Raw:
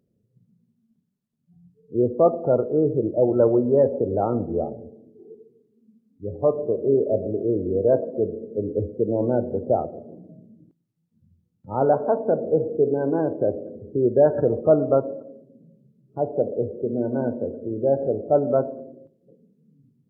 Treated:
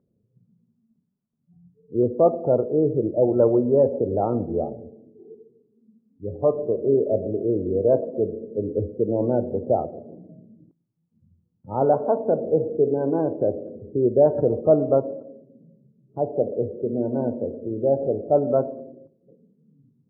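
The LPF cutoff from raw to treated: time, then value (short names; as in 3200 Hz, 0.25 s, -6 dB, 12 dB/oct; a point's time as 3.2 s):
LPF 24 dB/oct
1300 Hz
from 2.03 s 1100 Hz
from 3.39 s 1300 Hz
from 4.19 s 1200 Hz
from 6.3 s 1300 Hz
from 9.73 s 1200 Hz
from 11.85 s 1300 Hz
from 13.8 s 1100 Hz
from 18.37 s 1300 Hz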